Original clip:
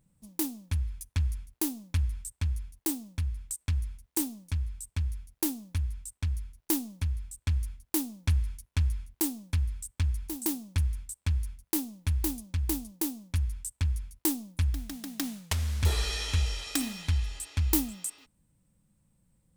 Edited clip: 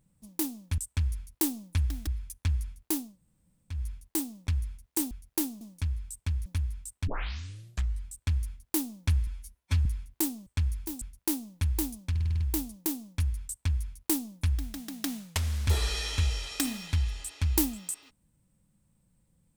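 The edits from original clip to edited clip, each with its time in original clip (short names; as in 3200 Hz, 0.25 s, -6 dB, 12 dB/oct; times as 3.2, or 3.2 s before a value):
1.82–2.46 room tone, crossfade 0.24 s
3.18–3.67 cut
5.16–5.66 move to 4.31
6.27 tape start 0.99 s
8.47–8.86 stretch 1.5×
9.47–9.89 cut
10.44–11.47 cut
12.56 stutter 0.05 s, 7 plays
13.62–14.91 copy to 0.78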